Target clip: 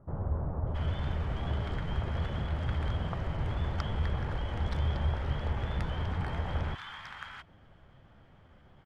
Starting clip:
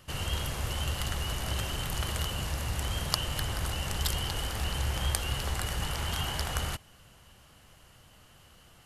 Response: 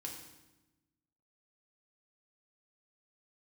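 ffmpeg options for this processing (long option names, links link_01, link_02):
-filter_complex "[0:a]lowpass=1400,asetrate=48091,aresample=44100,atempo=0.917004,acrossover=split=1100[link_01][link_02];[link_02]adelay=670[link_03];[link_01][link_03]amix=inputs=2:normalize=0,volume=1.5dB"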